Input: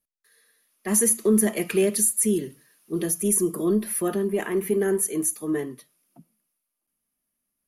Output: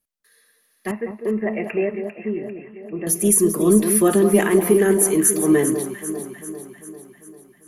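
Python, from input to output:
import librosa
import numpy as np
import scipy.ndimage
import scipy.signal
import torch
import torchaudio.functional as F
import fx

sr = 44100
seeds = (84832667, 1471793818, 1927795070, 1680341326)

y = fx.rider(x, sr, range_db=4, speed_s=0.5)
y = fx.cheby_ripple(y, sr, hz=2800.0, ripple_db=9, at=(0.91, 3.07))
y = fx.echo_alternate(y, sr, ms=198, hz=1300.0, feedback_pct=74, wet_db=-7.5)
y = F.gain(torch.from_numpy(y), 6.5).numpy()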